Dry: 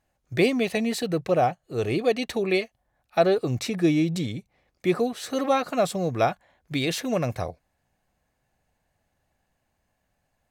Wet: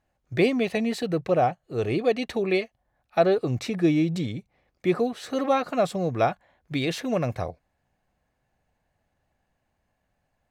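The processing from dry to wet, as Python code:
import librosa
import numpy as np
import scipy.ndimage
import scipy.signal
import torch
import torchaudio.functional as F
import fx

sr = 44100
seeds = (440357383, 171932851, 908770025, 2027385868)

y = fx.high_shelf(x, sr, hz=5300.0, db=-9.5)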